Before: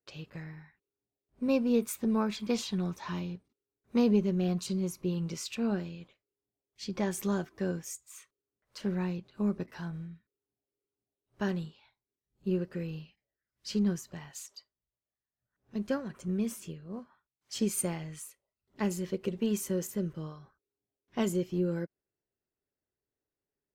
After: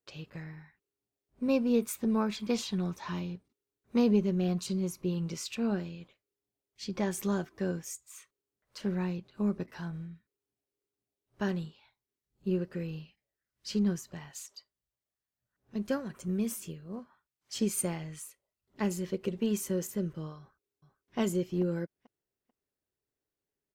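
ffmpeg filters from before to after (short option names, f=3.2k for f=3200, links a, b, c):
-filter_complex "[0:a]asettb=1/sr,asplit=3[a][b][c];[a]atrim=end=15.854[d];[b]atrim=start=15.85:end=16.96,asetpts=PTS-STARTPTS,afade=t=in:d=0.004:c=qsin,afade=t=out:st=1.106:d=0.004:c=qsin,highshelf=f=8.7k:g=8.5[e];[c]atrim=start=16.956[f];[d][e]acrossfade=d=0.004:c1=hsin:c2=qsin[g];[g][f]acrossfade=d=0.004:c1=qsin:c2=hsin,asplit=2[h][i];[i]afade=t=in:st=20.38:d=0.01,afade=t=out:st=21.18:d=0.01,aecho=0:1:440|880|1320:0.316228|0.0632456|0.0126491[j];[h][j]amix=inputs=2:normalize=0"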